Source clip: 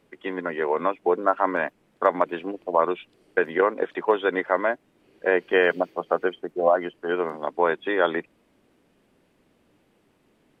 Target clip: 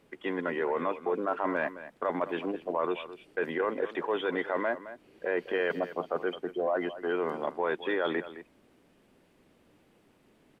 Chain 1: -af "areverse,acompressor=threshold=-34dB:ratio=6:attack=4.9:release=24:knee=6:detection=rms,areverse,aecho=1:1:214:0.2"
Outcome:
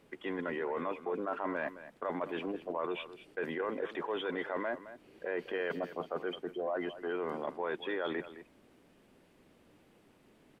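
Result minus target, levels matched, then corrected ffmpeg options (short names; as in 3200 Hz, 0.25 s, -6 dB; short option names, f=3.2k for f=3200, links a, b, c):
compressor: peak gain reduction +6 dB
-af "areverse,acompressor=threshold=-26.5dB:ratio=6:attack=4.9:release=24:knee=6:detection=rms,areverse,aecho=1:1:214:0.2"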